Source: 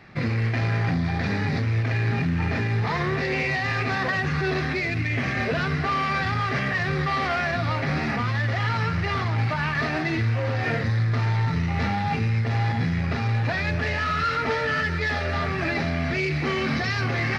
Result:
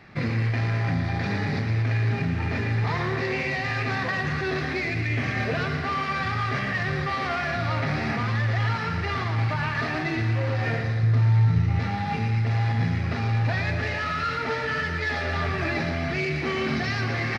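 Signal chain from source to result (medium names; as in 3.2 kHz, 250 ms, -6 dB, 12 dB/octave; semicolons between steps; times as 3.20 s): 11.03–11.80 s: bass shelf 280 Hz +9.5 dB; gain riding within 4 dB 0.5 s; on a send: feedback delay 116 ms, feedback 58%, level -8 dB; on the sum: trim -3.5 dB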